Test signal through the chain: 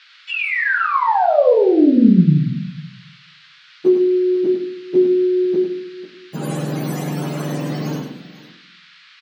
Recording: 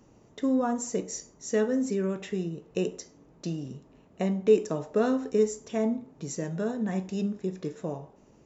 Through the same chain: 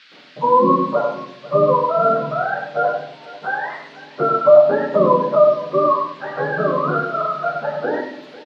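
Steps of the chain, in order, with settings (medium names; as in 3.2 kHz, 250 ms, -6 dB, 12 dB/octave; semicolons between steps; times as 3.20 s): spectrum inverted on a logarithmic axis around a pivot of 510 Hz; gate with hold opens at -51 dBFS; tilt EQ -2 dB/octave; in parallel at +2 dB: compression, threshold -27 dBFS; on the sum: band noise 1.3–4.4 kHz -55 dBFS; brick-wall FIR high-pass 150 Hz; on a send: multi-tap echo 100/495 ms -7/-18.5 dB; on the sum: simulated room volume 99 m³, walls mixed, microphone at 0.51 m; trim +5 dB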